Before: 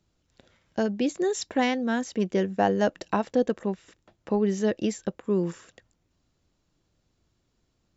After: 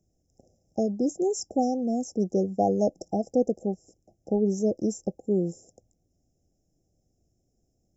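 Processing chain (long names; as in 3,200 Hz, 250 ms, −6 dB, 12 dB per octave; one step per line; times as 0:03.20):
linear-phase brick-wall band-stop 820–5,000 Hz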